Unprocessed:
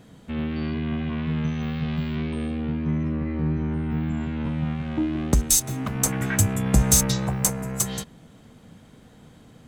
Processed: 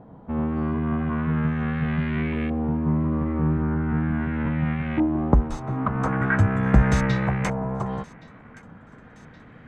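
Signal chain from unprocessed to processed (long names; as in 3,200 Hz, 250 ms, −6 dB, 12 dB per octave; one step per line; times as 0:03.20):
auto-filter low-pass saw up 0.4 Hz 860–2,200 Hz
delay with a high-pass on its return 1,121 ms, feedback 64%, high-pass 1,500 Hz, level −21 dB
level +2 dB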